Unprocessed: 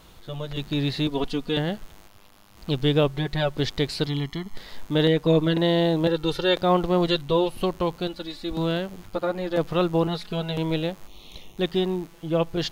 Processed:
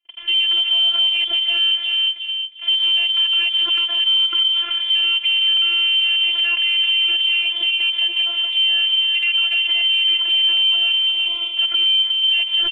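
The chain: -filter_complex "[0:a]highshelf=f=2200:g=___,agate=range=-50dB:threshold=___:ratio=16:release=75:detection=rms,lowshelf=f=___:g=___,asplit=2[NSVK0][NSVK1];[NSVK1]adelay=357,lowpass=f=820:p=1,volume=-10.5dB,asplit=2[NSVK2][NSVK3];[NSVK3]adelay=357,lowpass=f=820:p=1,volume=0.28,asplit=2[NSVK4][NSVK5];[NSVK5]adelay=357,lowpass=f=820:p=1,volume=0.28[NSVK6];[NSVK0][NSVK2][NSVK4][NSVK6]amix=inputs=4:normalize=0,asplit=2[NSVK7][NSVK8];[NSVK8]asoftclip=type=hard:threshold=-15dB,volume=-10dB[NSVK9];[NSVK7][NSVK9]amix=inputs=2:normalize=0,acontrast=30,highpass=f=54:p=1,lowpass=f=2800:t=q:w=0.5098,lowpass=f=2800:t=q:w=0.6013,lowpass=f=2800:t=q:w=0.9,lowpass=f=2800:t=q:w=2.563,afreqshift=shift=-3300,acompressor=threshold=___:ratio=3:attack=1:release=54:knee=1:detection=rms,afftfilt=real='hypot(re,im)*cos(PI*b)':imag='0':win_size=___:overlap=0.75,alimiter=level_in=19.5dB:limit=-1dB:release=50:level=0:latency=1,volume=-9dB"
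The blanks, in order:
-3, -47dB, 380, 11, -24dB, 512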